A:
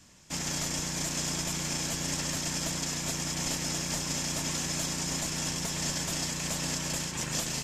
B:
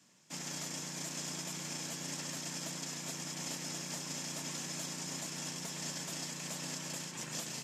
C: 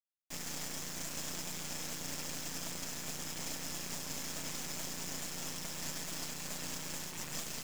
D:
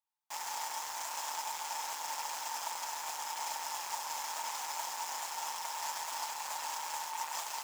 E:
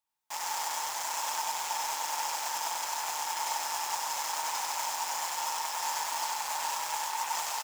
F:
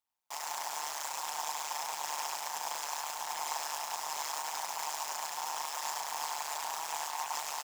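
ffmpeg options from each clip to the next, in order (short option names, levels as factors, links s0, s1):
-af "highpass=f=140:w=0.5412,highpass=f=140:w=1.3066,volume=0.376"
-af "acrusher=bits=5:dc=4:mix=0:aa=0.000001,volume=1.5"
-af "highpass=f=890:t=q:w=9.8"
-af "aecho=1:1:95:0.708,volume=1.58"
-af "tremolo=f=150:d=0.974"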